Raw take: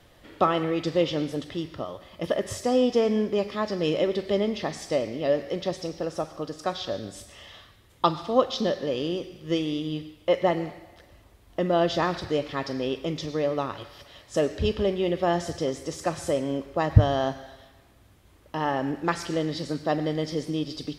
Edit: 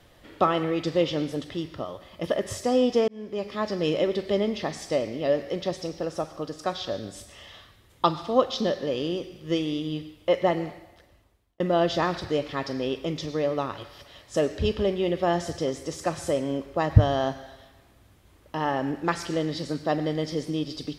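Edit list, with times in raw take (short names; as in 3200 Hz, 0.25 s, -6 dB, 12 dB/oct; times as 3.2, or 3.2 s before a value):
3.08–3.64 fade in
10.71–11.6 fade out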